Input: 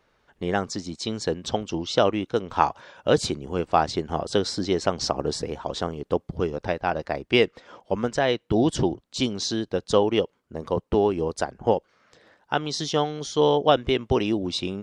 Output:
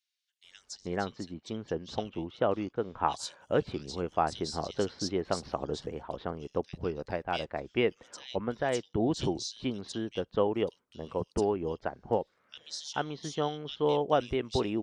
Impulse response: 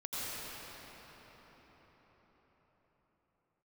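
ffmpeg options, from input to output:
-filter_complex "[0:a]asettb=1/sr,asplit=3[a][b][c];[a]atrim=end=0.774[d];[b]atrim=start=0.77:end=3.1,asetpts=PTS-STARTPTS,afade=t=in:d=0.004:c=qsin,afade=t=out:st=2.326:d=0.004:c=qsin,highshelf=f=4.8k:g=-12[e];[c]atrim=start=3.096[f];[d][e]acrossfade=d=0.004:c1=hsin:c2=qsin[g];[g][f]acrossfade=d=0.004:c1=qsin:c2=hsin,acrossover=split=3000[h][i];[h]adelay=440[j];[j][i]amix=inputs=2:normalize=0,volume=-7.5dB"

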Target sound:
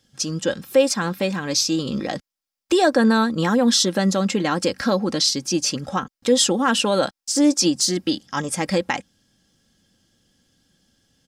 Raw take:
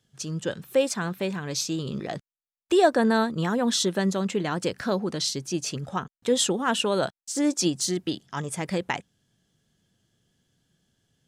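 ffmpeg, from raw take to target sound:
-filter_complex "[0:a]equalizer=f=5.1k:t=o:w=0.36:g=7,aecho=1:1:3.7:0.5,asplit=2[a][b];[b]alimiter=limit=-18dB:level=0:latency=1:release=162,volume=0.5dB[c];[a][c]amix=inputs=2:normalize=0"

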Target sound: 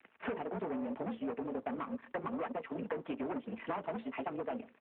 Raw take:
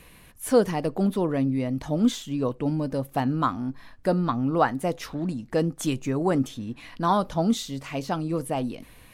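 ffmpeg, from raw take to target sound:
-filter_complex "[0:a]asplit=2[a][b];[b]acrusher=bits=6:mix=0:aa=0.000001,volume=-7.5dB[c];[a][c]amix=inputs=2:normalize=0,bandreject=f=60:t=h:w=6,bandreject=f=120:t=h:w=6,bandreject=f=180:t=h:w=6,bandreject=f=240:t=h:w=6,bandreject=f=300:t=h:w=6,bandreject=f=360:t=h:w=6,bandreject=f=420:t=h:w=6,bandreject=f=480:t=h:w=6,bandreject=f=540:t=h:w=6,bandreject=f=600:t=h:w=6,aecho=1:1:4.4:0.47,aeval=exprs='sgn(val(0))*max(abs(val(0))-0.00501,0)':c=same,acrusher=bits=7:mode=log:mix=0:aa=0.000001,atempo=1.9,afreqshift=42,aeval=exprs='(tanh(15.8*val(0)+0.8)-tanh(0.8))/15.8':c=same,highpass=f=310:t=q:w=0.5412,highpass=f=310:t=q:w=1.307,lowpass=f=2.8k:t=q:w=0.5176,lowpass=f=2.8k:t=q:w=0.7071,lowpass=f=2.8k:t=q:w=1.932,afreqshift=-55,acompressor=threshold=-43dB:ratio=8,asplit=2[d][e];[e]adelay=148,lowpass=f=1.1k:p=1,volume=-24dB,asplit=2[f][g];[g]adelay=148,lowpass=f=1.1k:p=1,volume=0.19[h];[f][h]amix=inputs=2:normalize=0[i];[d][i]amix=inputs=2:normalize=0,volume=7.5dB" -ar 8000 -c:a libopencore_amrnb -b:a 12200

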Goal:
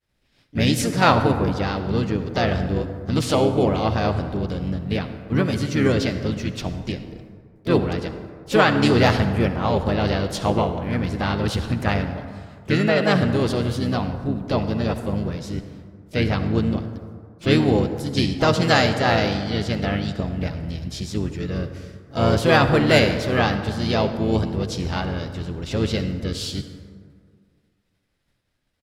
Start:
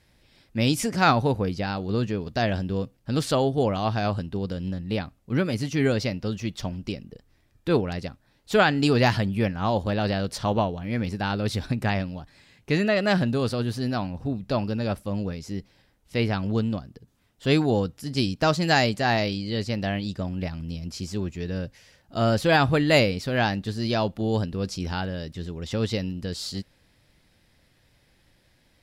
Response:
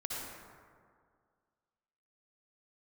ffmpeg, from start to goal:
-filter_complex "[0:a]agate=range=-33dB:threshold=-51dB:ratio=3:detection=peak,asplit=3[a][b][c];[b]asetrate=33038,aresample=44100,atempo=1.33484,volume=-4dB[d];[c]asetrate=55563,aresample=44100,atempo=0.793701,volume=-15dB[e];[a][d][e]amix=inputs=3:normalize=0,asplit=2[f][g];[1:a]atrim=start_sample=2205[h];[g][h]afir=irnorm=-1:irlink=0,volume=-8.5dB[i];[f][i]amix=inputs=2:normalize=0"

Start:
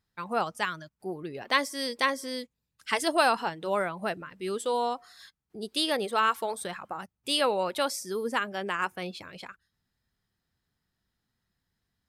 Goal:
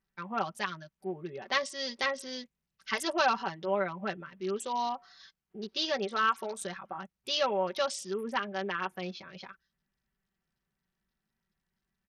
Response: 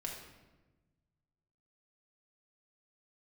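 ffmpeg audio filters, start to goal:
-af "aecho=1:1:5.2:0.81,volume=-5.5dB" -ar 48000 -c:a sbc -b:a 64k

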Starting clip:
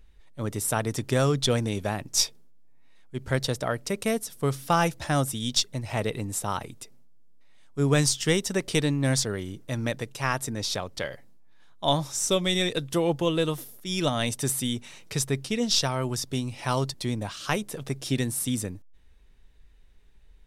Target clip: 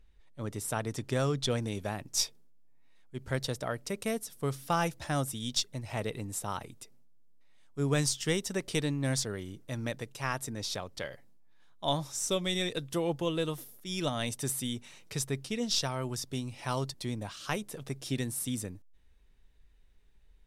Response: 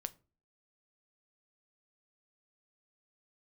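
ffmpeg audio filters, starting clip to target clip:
-af "asetnsamples=n=441:p=0,asendcmd='1.62 highshelf g 2',highshelf=f=12k:g=-7.5,volume=-6.5dB"

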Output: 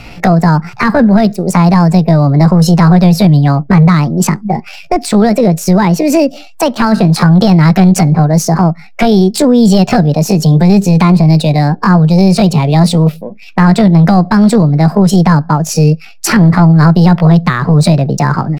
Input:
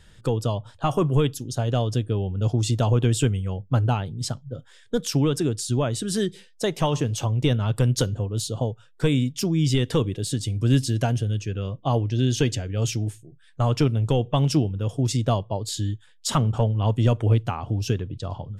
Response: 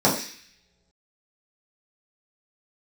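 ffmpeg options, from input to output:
-filter_complex "[0:a]bass=f=250:g=-8,treble=f=4k:g=-13,acrossover=split=160[a][b];[b]acompressor=threshold=-39dB:ratio=4[c];[a][c]amix=inputs=2:normalize=0,apsyclip=29.5dB,asplit=2[d][e];[e]adynamicsmooth=sensitivity=3:basefreq=1.9k,volume=1dB[f];[d][f]amix=inputs=2:normalize=0,asetrate=66075,aresample=44100,atempo=0.66742,volume=-8dB"

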